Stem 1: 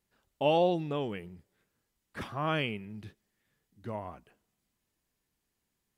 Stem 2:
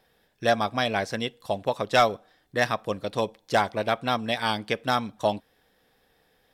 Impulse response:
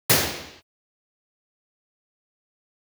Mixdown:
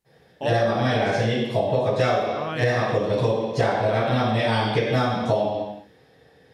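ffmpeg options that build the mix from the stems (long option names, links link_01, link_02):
-filter_complex "[0:a]volume=-0.5dB,asplit=2[link_01][link_02];[1:a]lowpass=frequency=11000:width=0.5412,lowpass=frequency=11000:width=1.3066,volume=-5dB,asplit=2[link_03][link_04];[link_04]volume=-10dB[link_05];[link_02]apad=whole_len=288014[link_06];[link_03][link_06]sidechaingate=range=-33dB:threshold=-59dB:ratio=16:detection=peak[link_07];[2:a]atrim=start_sample=2205[link_08];[link_05][link_08]afir=irnorm=-1:irlink=0[link_09];[link_01][link_07][link_09]amix=inputs=3:normalize=0,acompressor=threshold=-18dB:ratio=6"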